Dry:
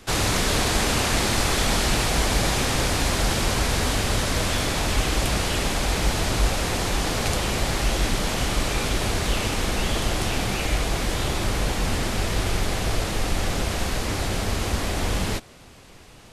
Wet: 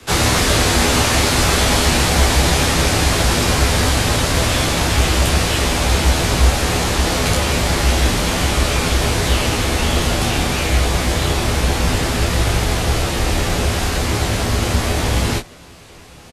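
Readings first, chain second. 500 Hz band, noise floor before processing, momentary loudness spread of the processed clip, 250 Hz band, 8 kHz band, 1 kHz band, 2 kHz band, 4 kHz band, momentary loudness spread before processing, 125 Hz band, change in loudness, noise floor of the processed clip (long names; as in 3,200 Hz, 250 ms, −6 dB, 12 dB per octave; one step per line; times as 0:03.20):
+7.0 dB, −47 dBFS, 4 LU, +7.0 dB, +7.0 dB, +7.0 dB, +7.0 dB, +7.0 dB, 5 LU, +9.0 dB, +7.5 dB, −40 dBFS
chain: frequency shifter +13 Hz
ambience of single reflections 12 ms −3.5 dB, 29 ms −4.5 dB
level +4.5 dB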